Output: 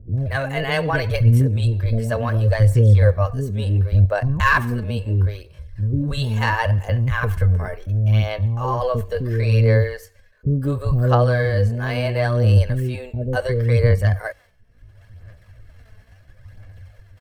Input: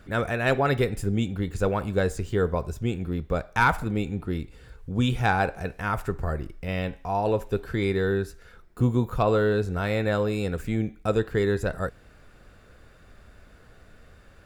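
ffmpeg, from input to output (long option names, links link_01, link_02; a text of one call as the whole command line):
ffmpeg -i in.wav -filter_complex "[0:a]agate=range=-33dB:threshold=-39dB:ratio=3:detection=peak,equalizer=frequency=85:width_type=o:width=0.54:gain=15,aecho=1:1:2.1:0.39,acompressor=mode=upward:threshold=-34dB:ratio=2.5,asetrate=37044,aresample=44100,acrossover=split=310[link_01][link_02];[link_02]adelay=180[link_03];[link_01][link_03]amix=inputs=2:normalize=0,asetrate=60591,aresample=44100,atempo=0.727827,aphaser=in_gain=1:out_gain=1:delay=4.7:decay=0.43:speed=0.72:type=sinusoidal,volume=1.5dB" out.wav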